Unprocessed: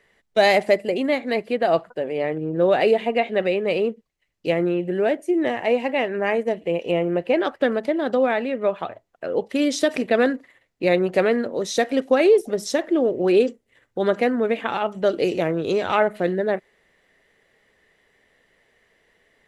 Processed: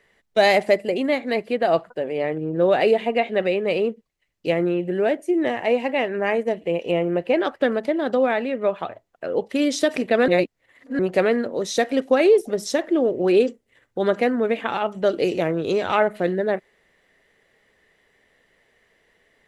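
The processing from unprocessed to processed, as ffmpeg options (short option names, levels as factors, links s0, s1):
-filter_complex "[0:a]asplit=3[s0][s1][s2];[s0]atrim=end=10.282[s3];[s1]atrim=start=10.278:end=10.992,asetpts=PTS-STARTPTS,areverse[s4];[s2]atrim=start=10.988[s5];[s3][s4]acrossfade=d=0.004:c1=hsin:c2=hsin[s6];[s6][s5]acrossfade=d=0.004:c1=hsin:c2=hsin"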